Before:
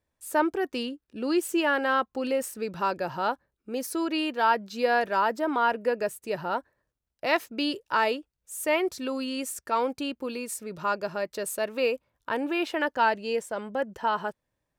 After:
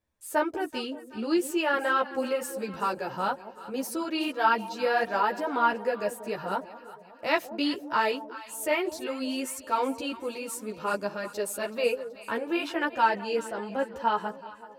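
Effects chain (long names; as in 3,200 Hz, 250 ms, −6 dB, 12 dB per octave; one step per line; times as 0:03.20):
delay that swaps between a low-pass and a high-pass 189 ms, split 820 Hz, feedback 71%, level −13 dB
string-ensemble chorus
level +2 dB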